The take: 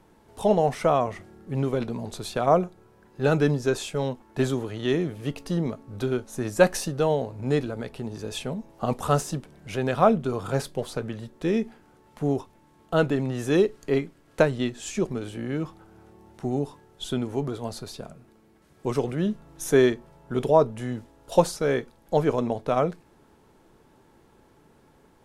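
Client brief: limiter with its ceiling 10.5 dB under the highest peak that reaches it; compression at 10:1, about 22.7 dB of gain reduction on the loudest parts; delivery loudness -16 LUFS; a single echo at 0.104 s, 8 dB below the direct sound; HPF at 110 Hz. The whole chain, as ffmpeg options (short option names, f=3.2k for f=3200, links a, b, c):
-af "highpass=110,acompressor=threshold=-36dB:ratio=10,alimiter=level_in=7dB:limit=-24dB:level=0:latency=1,volume=-7dB,aecho=1:1:104:0.398,volume=26.5dB"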